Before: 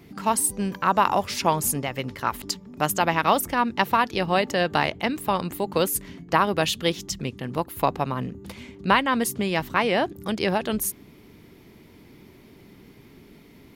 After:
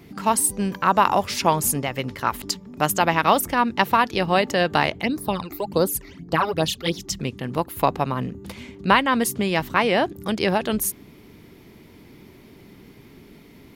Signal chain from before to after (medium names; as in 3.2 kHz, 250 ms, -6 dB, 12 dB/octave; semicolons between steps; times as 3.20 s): 5.02–7.07 s: phase shifter stages 12, 1.2 Hz -> 3.9 Hz, lowest notch 160–2900 Hz; trim +2.5 dB